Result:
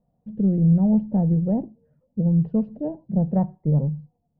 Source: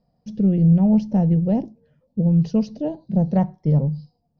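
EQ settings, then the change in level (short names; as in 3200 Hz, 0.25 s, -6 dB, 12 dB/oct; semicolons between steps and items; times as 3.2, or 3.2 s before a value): LPF 1200 Hz 12 dB/oct; air absorption 340 m; -2.0 dB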